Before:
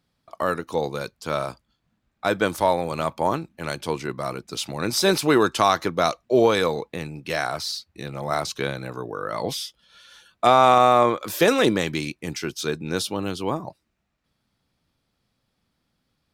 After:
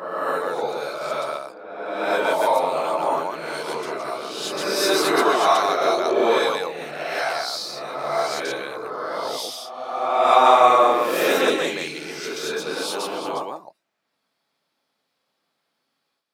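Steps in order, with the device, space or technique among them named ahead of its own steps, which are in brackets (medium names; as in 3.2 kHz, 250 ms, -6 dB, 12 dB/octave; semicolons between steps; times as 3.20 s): ghost voice (reverse; reverberation RT60 1.6 s, pre-delay 113 ms, DRR -8 dB; reverse; high-pass 440 Hz 12 dB/octave); trim -5.5 dB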